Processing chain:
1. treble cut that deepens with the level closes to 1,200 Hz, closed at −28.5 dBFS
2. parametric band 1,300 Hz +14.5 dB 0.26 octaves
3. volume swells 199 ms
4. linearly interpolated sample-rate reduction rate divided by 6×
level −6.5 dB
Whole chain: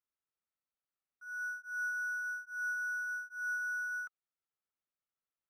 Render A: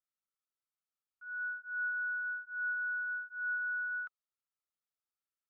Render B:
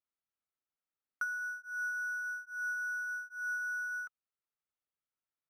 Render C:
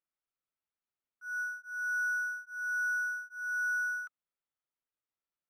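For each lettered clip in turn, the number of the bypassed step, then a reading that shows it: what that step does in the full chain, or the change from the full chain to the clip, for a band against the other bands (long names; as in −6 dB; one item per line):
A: 4, change in integrated loudness +1.0 LU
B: 3, change in crest factor +6.0 dB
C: 1, change in momentary loudness spread +2 LU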